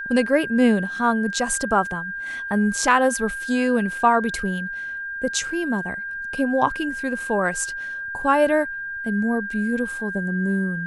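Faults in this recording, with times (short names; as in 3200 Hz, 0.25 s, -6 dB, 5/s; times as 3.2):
tone 1600 Hz -28 dBFS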